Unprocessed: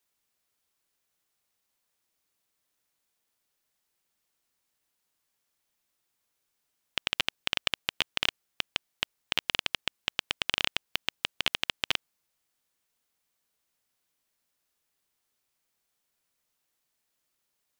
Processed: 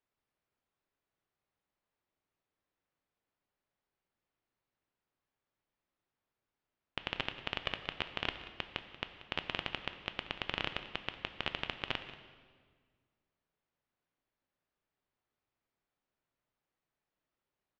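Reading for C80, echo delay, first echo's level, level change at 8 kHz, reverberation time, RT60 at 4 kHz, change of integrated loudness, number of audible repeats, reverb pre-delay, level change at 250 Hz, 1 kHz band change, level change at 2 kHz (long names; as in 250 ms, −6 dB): 10.5 dB, 184 ms, −16.5 dB, −22.5 dB, 1.7 s, 1.4 s, −8.5 dB, 1, 3 ms, −0.5 dB, −3.0 dB, −7.0 dB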